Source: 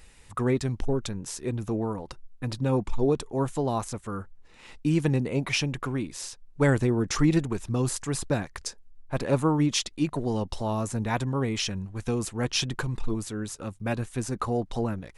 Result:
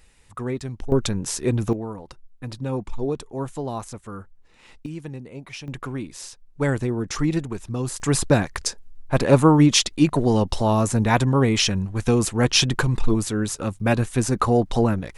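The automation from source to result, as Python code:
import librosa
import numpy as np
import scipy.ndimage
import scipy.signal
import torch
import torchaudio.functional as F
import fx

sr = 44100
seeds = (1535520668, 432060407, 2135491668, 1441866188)

y = fx.gain(x, sr, db=fx.steps((0.0, -3.0), (0.92, 8.5), (1.73, -2.0), (4.86, -10.5), (5.68, -0.5), (8.0, 9.0)))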